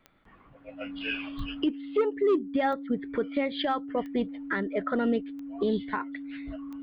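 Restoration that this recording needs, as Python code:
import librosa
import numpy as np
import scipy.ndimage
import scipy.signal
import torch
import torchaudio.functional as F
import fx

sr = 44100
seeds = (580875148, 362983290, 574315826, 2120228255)

y = fx.fix_declick_ar(x, sr, threshold=10.0)
y = fx.notch(y, sr, hz=280.0, q=30.0)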